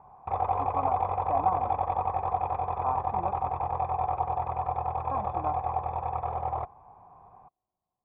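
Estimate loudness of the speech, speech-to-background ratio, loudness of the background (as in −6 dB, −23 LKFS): −35.0 LKFS, −4.5 dB, −30.5 LKFS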